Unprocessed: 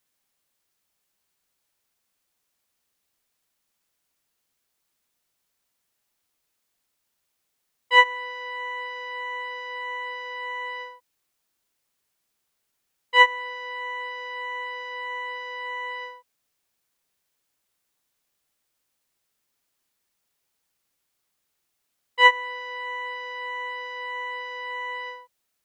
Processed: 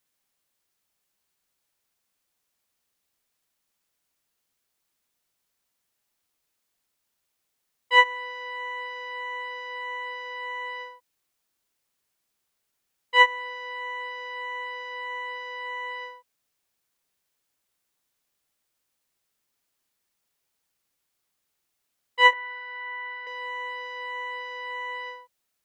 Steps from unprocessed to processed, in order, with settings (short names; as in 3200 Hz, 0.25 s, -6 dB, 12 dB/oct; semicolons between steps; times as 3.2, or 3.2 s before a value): 22.33–23.27 speaker cabinet 450–3600 Hz, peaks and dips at 500 Hz -8 dB, 720 Hz +8 dB, 1100 Hz -8 dB, 1600 Hz +10 dB, 2300 Hz -5 dB, 3400 Hz -8 dB; gain -1.5 dB